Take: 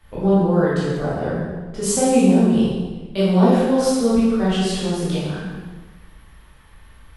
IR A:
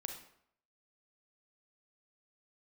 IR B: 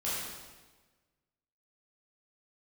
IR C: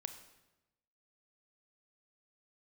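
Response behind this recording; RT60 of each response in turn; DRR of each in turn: B; 0.70 s, 1.3 s, 1.0 s; 4.0 dB, -9.5 dB, 8.0 dB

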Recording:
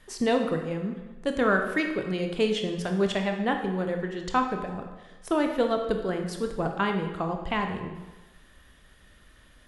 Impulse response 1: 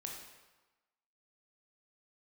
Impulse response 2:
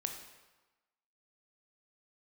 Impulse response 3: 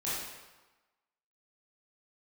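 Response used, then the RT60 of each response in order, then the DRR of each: 2; 1.2 s, 1.2 s, 1.2 s; -0.5 dB, 4.0 dB, -10.5 dB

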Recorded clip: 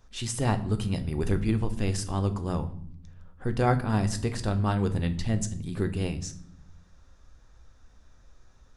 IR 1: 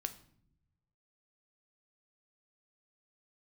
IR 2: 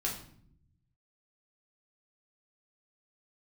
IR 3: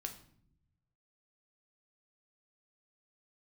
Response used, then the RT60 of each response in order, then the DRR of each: 1; no single decay rate, 0.60 s, no single decay rate; 8.0 dB, -3.5 dB, 4.0 dB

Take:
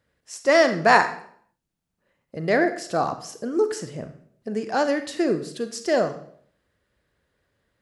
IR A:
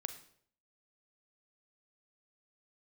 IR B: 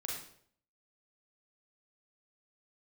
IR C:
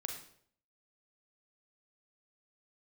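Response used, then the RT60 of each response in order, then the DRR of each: A; 0.60 s, 0.60 s, 0.60 s; 9.0 dB, -3.0 dB, 2.5 dB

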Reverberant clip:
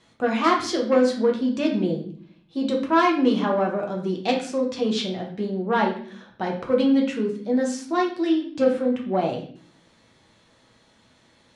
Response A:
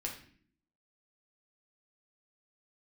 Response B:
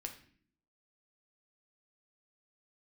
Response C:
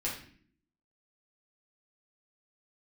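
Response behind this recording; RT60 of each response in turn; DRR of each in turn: A; 0.55 s, 0.55 s, 0.55 s; -1.0 dB, 3.5 dB, -6.0 dB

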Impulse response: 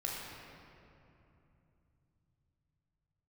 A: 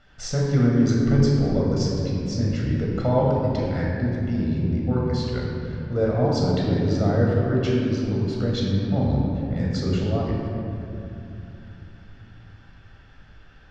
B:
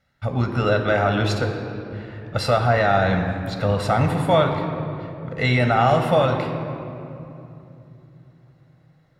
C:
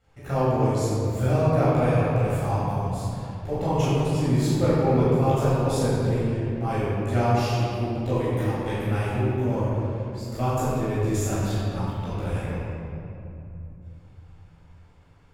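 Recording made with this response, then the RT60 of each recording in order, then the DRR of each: A; 2.9 s, 2.9 s, 2.9 s; -3.5 dB, 4.5 dB, -11.0 dB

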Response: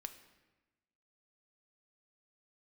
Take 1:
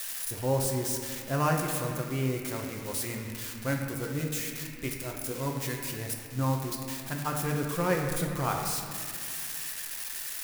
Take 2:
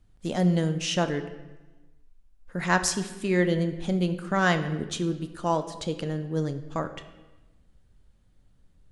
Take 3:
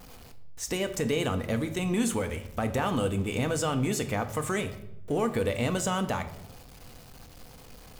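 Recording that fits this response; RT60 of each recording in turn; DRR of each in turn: 2; 2.2 s, 1.1 s, 0.80 s; 0.5 dB, 8.0 dB, 7.5 dB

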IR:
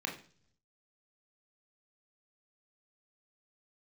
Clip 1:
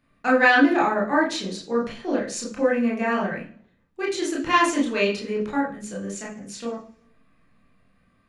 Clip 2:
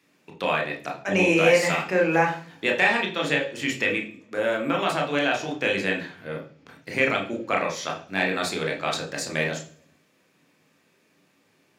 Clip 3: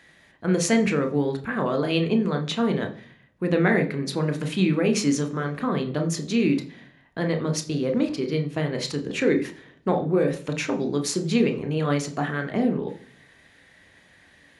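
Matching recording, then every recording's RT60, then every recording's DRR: 2; 0.50 s, no single decay rate, no single decay rate; -3.5 dB, 0.5 dB, 5.5 dB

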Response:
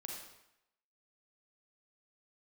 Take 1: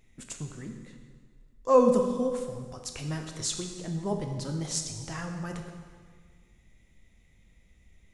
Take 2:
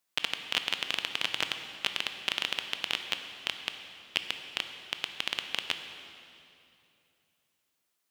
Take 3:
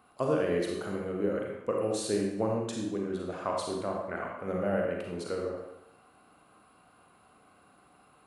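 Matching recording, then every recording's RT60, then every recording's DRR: 3; 1.7 s, 2.8 s, 0.85 s; 3.5 dB, 6.5 dB, -1.0 dB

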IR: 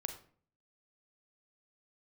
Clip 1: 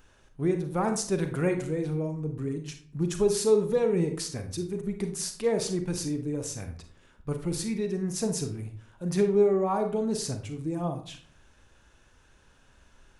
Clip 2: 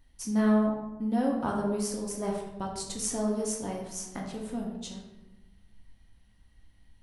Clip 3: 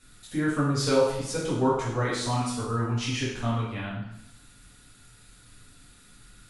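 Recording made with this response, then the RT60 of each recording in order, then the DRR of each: 1; 0.50 s, 1.1 s, 0.80 s; 6.0 dB, -1.5 dB, -8.5 dB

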